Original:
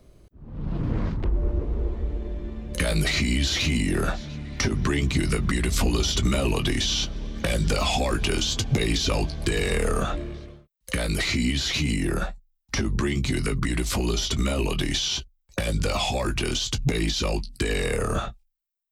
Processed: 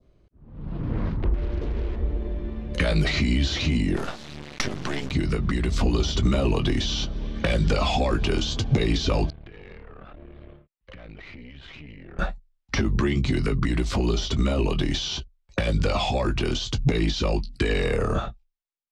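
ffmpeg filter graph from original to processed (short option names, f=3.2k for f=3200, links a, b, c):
-filter_complex "[0:a]asettb=1/sr,asplit=3[a][b][c];[a]atrim=end=1.344[d];[b]atrim=start=1.34:end=1.96,asetpts=PTS-STARTPTS,afade=t=in:d=0.004:c=qsin,afade=t=out:st=0.616:d=0.004:c=qsin,acompressor=threshold=-24dB:ratio=16:attack=3.2:release=140:knee=1:detection=peak,acrusher=bits=6:mix=0:aa=0.5[e];[c]atrim=start=1.956[f];[d][e]acrossfade=d=0.004:c1=hsin:c2=qsin[g];[g][f]acrossfade=d=0.004:c1=qsin:c2=hsin,asettb=1/sr,asplit=3[h][i][j];[h]atrim=end=3.964[k];[i]atrim=start=3.96:end=5.11,asetpts=PTS-STARTPTS,afade=t=in:d=0.004:c=qsin,afade=t=out:st=1.146:d=0.004:c=qsin,highpass=130,highshelf=f=2.3k:g=9,acrusher=bits=3:dc=4:mix=0:aa=0.000001[l];[j]atrim=start=5.106[m];[k][l]acrossfade=d=0.004:c1=hsin:c2=qsin[n];[n][m]acrossfade=d=0.004:c1=qsin:c2=hsin,asettb=1/sr,asplit=3[o][p][q];[o]atrim=end=9.304[r];[p]atrim=start=9.3:end=12.19,asetpts=PTS-STARTPTS,afade=t=in:d=0.004:c=qsin,afade=t=out:st=2.886:d=0.004:c=qsin,lowpass=f=3.1k:w=0.5412,lowpass=f=3.1k:w=1.3066,acompressor=threshold=-38dB:ratio=10:attack=3.2:release=140:knee=1:detection=peak,aeval=exprs='(tanh(79.4*val(0)+0.8)-tanh(0.8))/79.4':c=same[s];[q]atrim=start=12.186[t];[r][s]acrossfade=d=0.004:c1=hsin:c2=qsin[u];[u][t]acrossfade=d=0.004:c1=qsin:c2=hsin,lowpass=4.1k,adynamicequalizer=threshold=0.00794:dfrequency=2200:dqfactor=0.91:tfrequency=2200:tqfactor=0.91:attack=5:release=100:ratio=0.375:range=3:mode=cutabove:tftype=bell,dynaudnorm=f=270:g=7:m=10dB,volume=-7dB"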